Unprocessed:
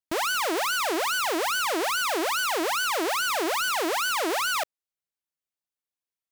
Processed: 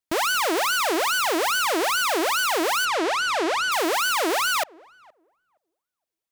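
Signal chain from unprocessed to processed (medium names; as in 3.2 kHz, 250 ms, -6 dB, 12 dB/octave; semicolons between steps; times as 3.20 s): 2.85–3.72 s: distance through air 67 m; on a send: filtered feedback delay 469 ms, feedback 18%, low-pass 950 Hz, level -24 dB; on the sum: trim +3.5 dB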